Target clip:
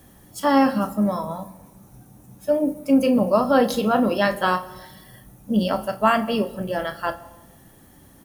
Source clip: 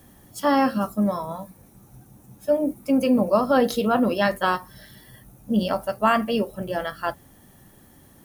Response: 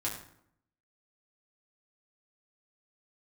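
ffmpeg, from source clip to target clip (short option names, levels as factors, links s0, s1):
-filter_complex "[0:a]asplit=2[s0][s1];[s1]adelay=33,volume=0.237[s2];[s0][s2]amix=inputs=2:normalize=0,asplit=2[s3][s4];[1:a]atrim=start_sample=2205,asetrate=23373,aresample=44100[s5];[s4][s5]afir=irnorm=-1:irlink=0,volume=0.119[s6];[s3][s6]amix=inputs=2:normalize=0"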